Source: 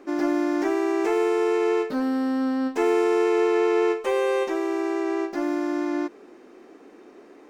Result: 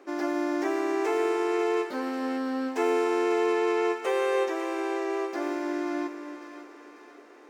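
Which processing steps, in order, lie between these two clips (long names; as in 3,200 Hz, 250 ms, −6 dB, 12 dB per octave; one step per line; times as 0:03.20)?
high-pass filter 370 Hz 12 dB per octave
on a send: echo with a time of its own for lows and highs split 950 Hz, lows 282 ms, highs 544 ms, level −10 dB
on the sum: level −2 dB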